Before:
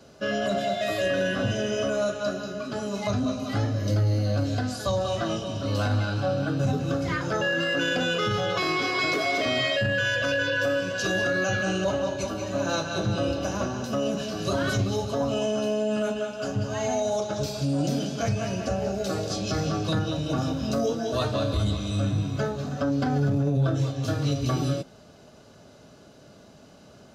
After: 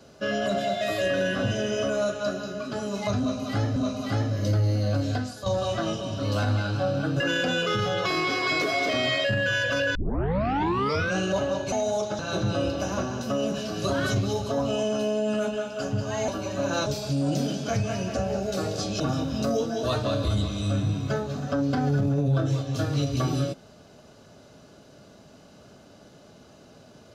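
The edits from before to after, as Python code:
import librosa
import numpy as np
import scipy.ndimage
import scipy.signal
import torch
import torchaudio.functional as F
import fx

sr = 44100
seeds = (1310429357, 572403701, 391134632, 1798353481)

y = fx.edit(x, sr, fx.repeat(start_s=3.19, length_s=0.57, count=2),
    fx.fade_out_to(start_s=4.61, length_s=0.28, curve='qua', floor_db=-9.0),
    fx.cut(start_s=6.63, length_s=1.09),
    fx.tape_start(start_s=10.47, length_s=1.22),
    fx.swap(start_s=12.24, length_s=0.58, other_s=16.91, other_length_s=0.47),
    fx.cut(start_s=19.52, length_s=0.77), tone=tone)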